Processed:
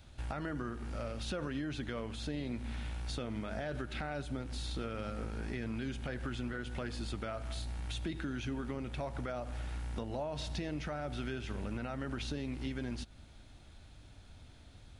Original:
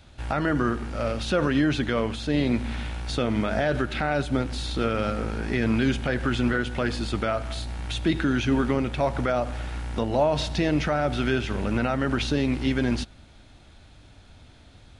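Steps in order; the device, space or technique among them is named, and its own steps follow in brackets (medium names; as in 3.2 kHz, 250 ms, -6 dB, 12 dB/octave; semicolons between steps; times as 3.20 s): ASMR close-microphone chain (bass shelf 140 Hz +4.5 dB; compression 4:1, threshold -29 dBFS, peak gain reduction 10.5 dB; treble shelf 7.9 kHz +7 dB); trim -7.5 dB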